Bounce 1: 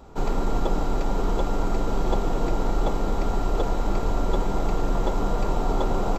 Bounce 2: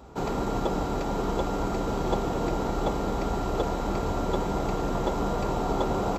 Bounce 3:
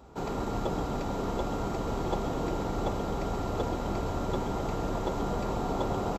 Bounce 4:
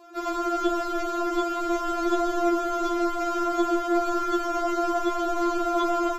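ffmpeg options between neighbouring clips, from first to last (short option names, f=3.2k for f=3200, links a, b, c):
-af "highpass=f=45:w=0.5412,highpass=f=45:w=1.3066"
-filter_complex "[0:a]asplit=9[a][b][c][d][e][f][g][h][i];[b]adelay=130,afreqshift=-140,volume=-8.5dB[j];[c]adelay=260,afreqshift=-280,volume=-12.5dB[k];[d]adelay=390,afreqshift=-420,volume=-16.5dB[l];[e]adelay=520,afreqshift=-560,volume=-20.5dB[m];[f]adelay=650,afreqshift=-700,volume=-24.6dB[n];[g]adelay=780,afreqshift=-840,volume=-28.6dB[o];[h]adelay=910,afreqshift=-980,volume=-32.6dB[p];[i]adelay=1040,afreqshift=-1120,volume=-36.6dB[q];[a][j][k][l][m][n][o][p][q]amix=inputs=9:normalize=0,volume=-4.5dB"
-af "afftfilt=real='re*4*eq(mod(b,16),0)':imag='im*4*eq(mod(b,16),0)':win_size=2048:overlap=0.75,volume=9dB"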